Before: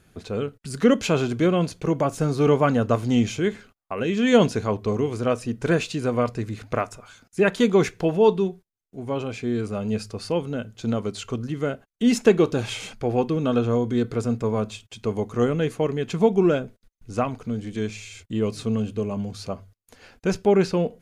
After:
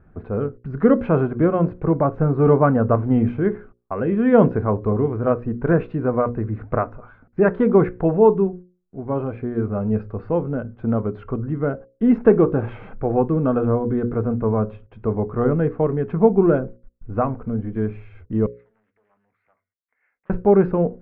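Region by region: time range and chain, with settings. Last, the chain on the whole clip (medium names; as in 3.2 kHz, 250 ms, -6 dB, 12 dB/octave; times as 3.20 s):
18.46–20.30 s: compression 5:1, threshold -29 dBFS + band-pass filter 2.1 kHz, Q 12 + loudspeaker Doppler distortion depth 0.44 ms
whole clip: low-pass 1.5 kHz 24 dB/octave; bass shelf 71 Hz +10.5 dB; hum notches 60/120/180/240/300/360/420/480/540 Hz; trim +3.5 dB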